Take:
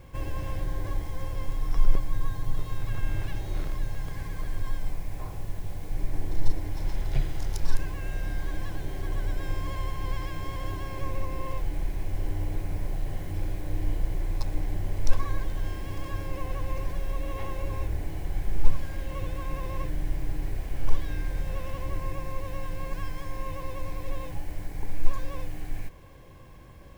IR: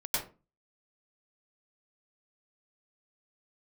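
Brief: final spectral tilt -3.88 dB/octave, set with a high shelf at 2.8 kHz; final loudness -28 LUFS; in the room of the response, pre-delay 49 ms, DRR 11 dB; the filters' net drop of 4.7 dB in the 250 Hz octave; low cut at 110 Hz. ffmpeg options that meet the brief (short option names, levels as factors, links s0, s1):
-filter_complex "[0:a]highpass=110,equalizer=f=250:t=o:g=-7,highshelf=f=2800:g=7,asplit=2[s0][s1];[1:a]atrim=start_sample=2205,adelay=49[s2];[s1][s2]afir=irnorm=-1:irlink=0,volume=0.141[s3];[s0][s3]amix=inputs=2:normalize=0,volume=3.55"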